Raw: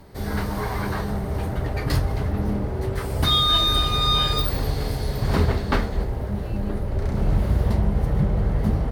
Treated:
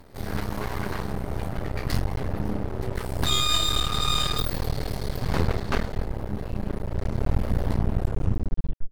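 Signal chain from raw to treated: tape stop on the ending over 1.01 s; half-wave rectifier

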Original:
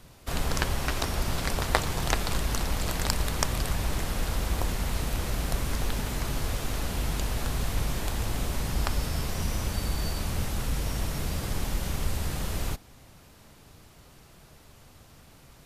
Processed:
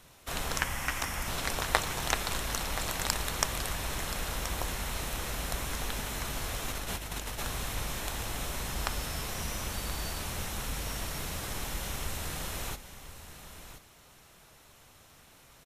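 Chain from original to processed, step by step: 0.59–1.27 s: graphic EQ with 31 bands 400 Hz -10 dB, 630 Hz -5 dB, 2 kHz +5 dB, 4 kHz -10 dB; 6.68–7.43 s: compressor with a negative ratio -30 dBFS, ratio -0.5; bass shelf 460 Hz -9.5 dB; band-stop 4.7 kHz, Q 11; delay 1027 ms -12 dB

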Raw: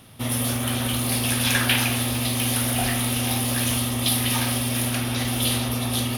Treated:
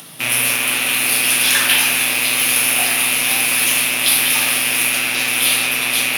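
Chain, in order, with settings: rattle on loud lows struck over -34 dBFS, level -12 dBFS; high-pass 140 Hz 24 dB/octave; tilt EQ +2 dB/octave; upward compressor, threshold -33 dBFS; on a send: reverberation RT60 0.75 s, pre-delay 6 ms, DRR 1.5 dB; on the sum: trim +1 dB

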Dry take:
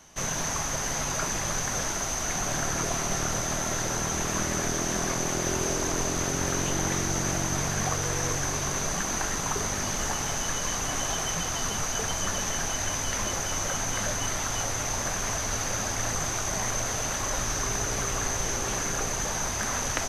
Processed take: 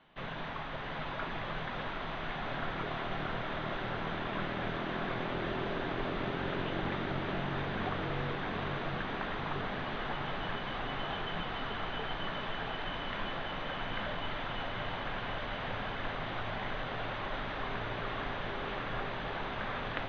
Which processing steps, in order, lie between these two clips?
elliptic low-pass 3.6 kHz, stop band 50 dB; peaking EQ 62 Hz -11.5 dB 0.65 oct; hum notches 50/100 Hz; on a send: echo that smears into a reverb 743 ms, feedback 72%, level -5 dB; on the sum: trim -6.5 dB

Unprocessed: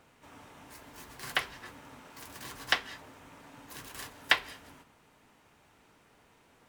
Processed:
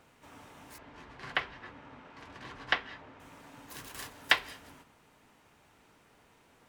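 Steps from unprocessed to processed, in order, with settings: 0.78–3.20 s: low-pass 3 kHz 12 dB/octave

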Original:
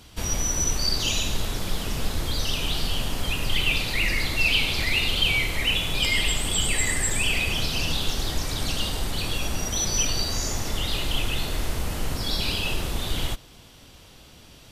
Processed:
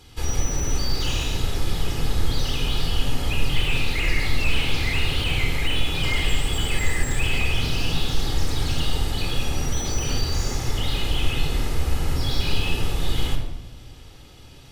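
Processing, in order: treble shelf 11 kHz -4 dB; simulated room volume 4000 m³, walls furnished, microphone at 4 m; slew-rate limiter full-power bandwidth 200 Hz; trim -2.5 dB

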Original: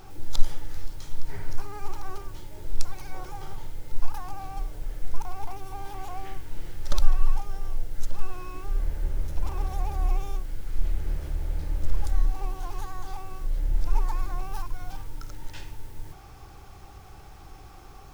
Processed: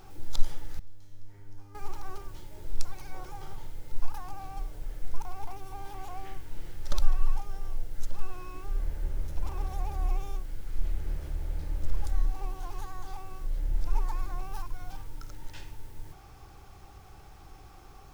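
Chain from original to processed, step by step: 0.79–1.75 s: feedback comb 100 Hz, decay 1.5 s, harmonics all, mix 90%; trim -4 dB

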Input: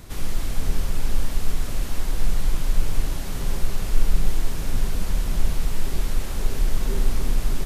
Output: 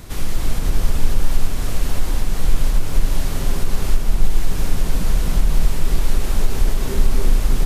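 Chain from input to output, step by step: compression, threshold -14 dBFS, peak gain reduction 7 dB; echo whose repeats swap between lows and highs 268 ms, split 1.3 kHz, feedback 53%, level -3.5 dB; trim +5 dB

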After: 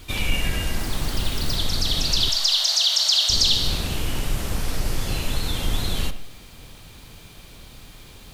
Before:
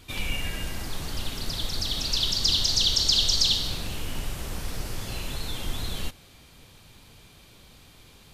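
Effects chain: octave divider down 2 oct, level +2 dB; 2.29–3.30 s: elliptic high-pass 620 Hz, stop band 50 dB; in parallel at 0 dB: peak limiter -19 dBFS, peak gain reduction 8.5 dB; on the sum: bit crusher 9-bit; on a send at -12 dB: reverberation RT60 0.45 s, pre-delay 35 ms; 0.80–1.56 s: on the sum: careless resampling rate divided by 2×, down none, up hold

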